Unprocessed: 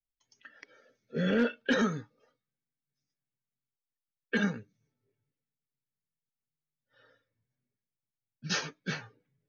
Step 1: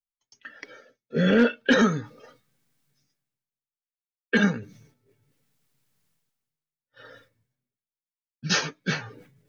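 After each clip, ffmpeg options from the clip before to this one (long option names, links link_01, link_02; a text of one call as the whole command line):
ffmpeg -i in.wav -af "agate=range=-33dB:threshold=-60dB:ratio=3:detection=peak,areverse,acompressor=mode=upward:threshold=-45dB:ratio=2.5,areverse,volume=8dB" out.wav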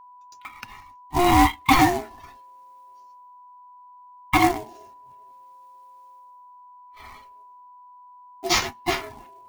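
ffmpeg -i in.wav -af "aeval=exprs='val(0)*sin(2*PI*530*n/s)':channel_layout=same,acrusher=bits=3:mode=log:mix=0:aa=0.000001,aeval=exprs='val(0)+0.00282*sin(2*PI*990*n/s)':channel_layout=same,volume=5.5dB" out.wav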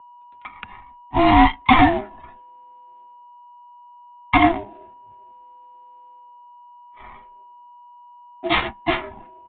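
ffmpeg -i in.wav -af "afreqshift=-22,adynamicsmooth=sensitivity=7:basefreq=1700,aresample=8000,aresample=44100,volume=3.5dB" out.wav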